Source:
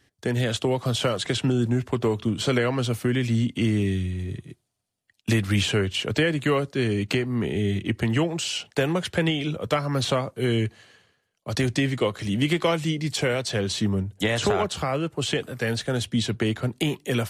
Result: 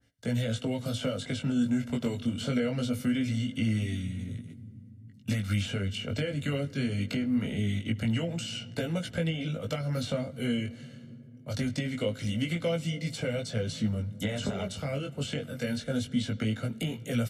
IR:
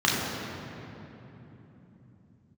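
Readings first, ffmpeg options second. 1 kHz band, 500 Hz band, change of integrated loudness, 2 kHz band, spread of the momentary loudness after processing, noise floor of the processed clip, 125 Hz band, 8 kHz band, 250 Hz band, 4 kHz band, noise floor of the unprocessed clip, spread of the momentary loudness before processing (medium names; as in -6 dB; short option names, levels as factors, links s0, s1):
-13.5 dB, -9.0 dB, -6.5 dB, -9.5 dB, 6 LU, -49 dBFS, -5.5 dB, -9.0 dB, -4.5 dB, -8.5 dB, -74 dBFS, 4 LU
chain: -filter_complex "[0:a]aecho=1:1:1.4:0.69,acrossover=split=610|2100[s0][s1][s2];[s0]acompressor=threshold=0.0794:ratio=4[s3];[s1]acompressor=threshold=0.0141:ratio=4[s4];[s2]acompressor=threshold=0.0126:ratio=4[s5];[s3][s4][s5]amix=inputs=3:normalize=0,equalizer=f=250:t=o:w=0.33:g=10,equalizer=f=500:t=o:w=0.33:g=5,equalizer=f=800:t=o:w=0.33:g=-9,asplit=2[s6][s7];[1:a]atrim=start_sample=2205,adelay=72[s8];[s7][s8]afir=irnorm=-1:irlink=0,volume=0.015[s9];[s6][s9]amix=inputs=2:normalize=0,flanger=delay=17.5:depth=3.8:speed=0.23,adynamicequalizer=threshold=0.00708:dfrequency=1800:dqfactor=0.7:tfrequency=1800:tqfactor=0.7:attack=5:release=100:ratio=0.375:range=2:mode=boostabove:tftype=highshelf,volume=0.631"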